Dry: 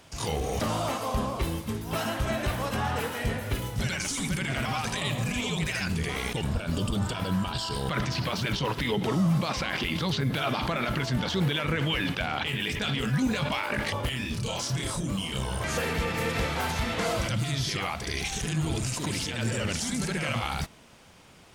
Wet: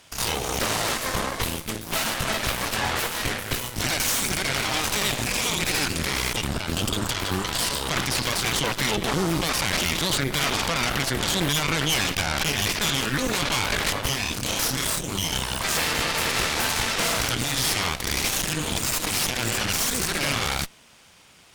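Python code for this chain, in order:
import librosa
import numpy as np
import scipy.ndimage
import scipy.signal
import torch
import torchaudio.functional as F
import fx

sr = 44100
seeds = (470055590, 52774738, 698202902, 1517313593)

y = fx.tilt_shelf(x, sr, db=-5.0, hz=1200.0)
y = fx.cheby_harmonics(y, sr, harmonics=(8,), levels_db=(-8,), full_scale_db=-13.5)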